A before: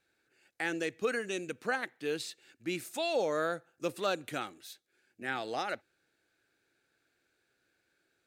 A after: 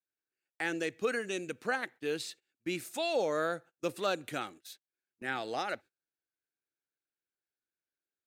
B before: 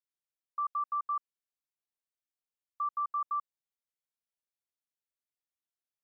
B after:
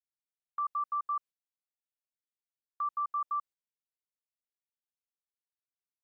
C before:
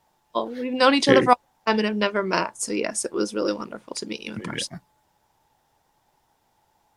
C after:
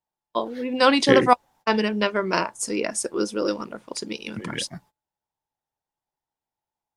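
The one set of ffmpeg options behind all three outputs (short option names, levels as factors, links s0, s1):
-af "agate=range=0.0631:threshold=0.00316:ratio=16:detection=peak"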